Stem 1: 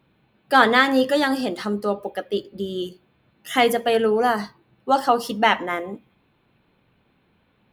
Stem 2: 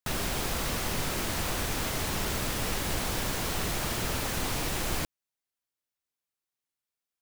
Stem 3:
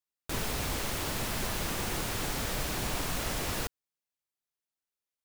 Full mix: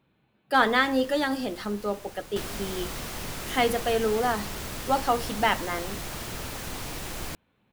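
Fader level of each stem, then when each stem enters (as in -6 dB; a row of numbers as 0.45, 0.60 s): -6.0, -4.5, -13.5 dB; 0.00, 2.30, 0.25 s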